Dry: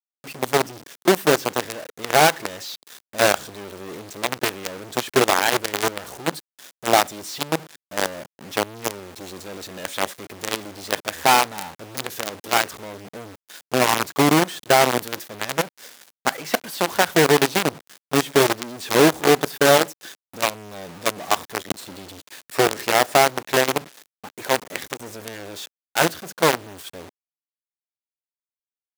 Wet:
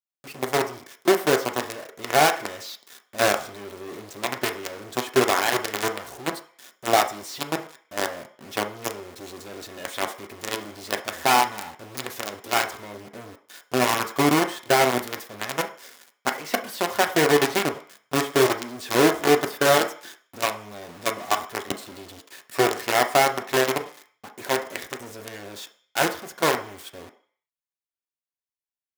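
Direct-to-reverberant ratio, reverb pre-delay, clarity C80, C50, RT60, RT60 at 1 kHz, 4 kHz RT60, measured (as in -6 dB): 4.0 dB, 3 ms, 16.0 dB, 12.5 dB, 0.45 s, 0.50 s, 0.70 s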